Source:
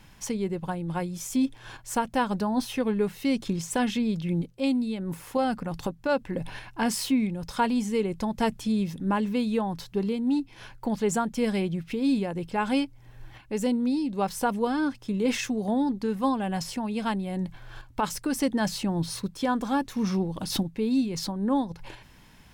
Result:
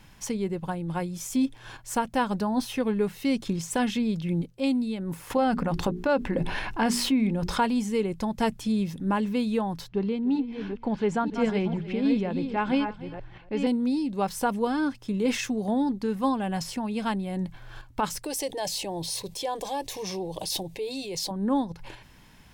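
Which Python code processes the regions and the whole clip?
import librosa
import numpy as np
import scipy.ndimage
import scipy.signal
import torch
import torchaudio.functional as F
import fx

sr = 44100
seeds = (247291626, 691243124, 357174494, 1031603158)

y = fx.chain(x, sr, fx.high_shelf(hz=5100.0, db=-9.5),
    fx.hum_notches(base_hz=60, count=7),
    fx.env_flatten(amount_pct=50), at=(5.3, 7.6))
y = fx.chain(y, sr, fx.reverse_delay(ms=474, wet_db=-7),
    fx.lowpass(hz=3500.0, slope=12),
    fx.echo_single(ms=295, db=-18.5), at=(9.88, 13.67))
y = fx.chain(y, sr, fx.low_shelf(hz=190.0, db=-11.5),
    fx.fixed_phaser(hz=560.0, stages=4),
    fx.env_flatten(amount_pct=50), at=(18.24, 21.31))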